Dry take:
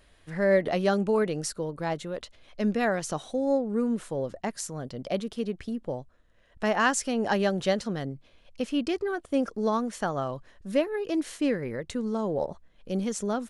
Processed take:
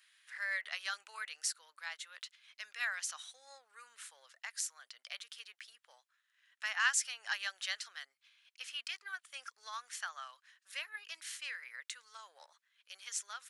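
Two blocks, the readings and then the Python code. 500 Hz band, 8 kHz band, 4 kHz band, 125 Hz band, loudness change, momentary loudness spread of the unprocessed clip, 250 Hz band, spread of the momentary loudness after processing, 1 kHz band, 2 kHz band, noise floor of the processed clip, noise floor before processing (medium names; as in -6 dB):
-36.5 dB, -2.0 dB, -2.0 dB, under -40 dB, -11.0 dB, 11 LU, under -40 dB, 16 LU, -15.5 dB, -3.5 dB, -85 dBFS, -60 dBFS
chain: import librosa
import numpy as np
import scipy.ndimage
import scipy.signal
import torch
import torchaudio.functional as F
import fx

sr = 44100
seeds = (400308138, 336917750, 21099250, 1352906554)

y = scipy.signal.sosfilt(scipy.signal.butter(4, 1500.0, 'highpass', fs=sr, output='sos'), x)
y = y * 10.0 ** (-2.0 / 20.0)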